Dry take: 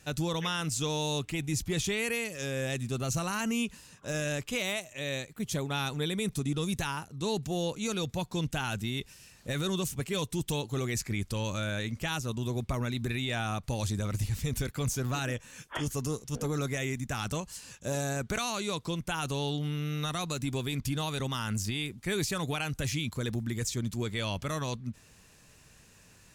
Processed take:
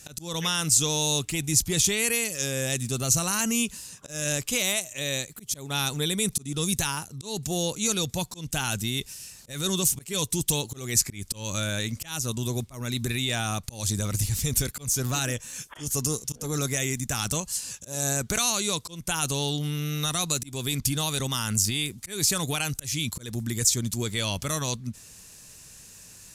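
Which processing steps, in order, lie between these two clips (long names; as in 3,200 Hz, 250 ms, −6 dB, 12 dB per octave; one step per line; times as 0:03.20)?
volume swells 224 ms
bass and treble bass +1 dB, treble +13 dB
downsampling to 32,000 Hz
level +2.5 dB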